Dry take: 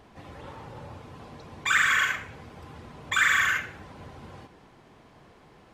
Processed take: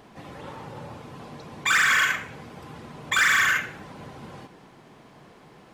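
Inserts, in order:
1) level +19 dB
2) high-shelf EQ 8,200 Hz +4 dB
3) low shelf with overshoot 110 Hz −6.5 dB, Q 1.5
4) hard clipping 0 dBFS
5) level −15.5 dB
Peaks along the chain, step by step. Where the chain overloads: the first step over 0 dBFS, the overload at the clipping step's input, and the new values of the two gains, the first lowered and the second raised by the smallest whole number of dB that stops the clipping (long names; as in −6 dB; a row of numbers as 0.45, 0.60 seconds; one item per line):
+9.0, +9.5, +9.5, 0.0, −15.5 dBFS
step 1, 9.5 dB
step 1 +9 dB, step 5 −5.5 dB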